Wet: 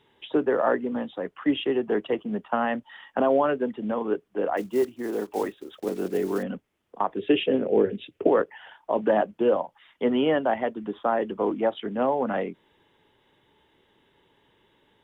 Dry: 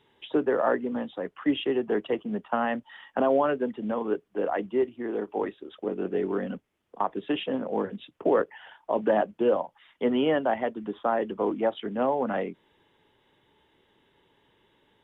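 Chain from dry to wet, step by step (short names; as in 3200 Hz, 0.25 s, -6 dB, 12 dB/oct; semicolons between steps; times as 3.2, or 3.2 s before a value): 4.57–6.44 block floating point 5-bit; 7.19–8.27 fifteen-band EQ 100 Hz +8 dB, 400 Hz +11 dB, 1000 Hz -9 dB, 2500 Hz +6 dB; gain +1.5 dB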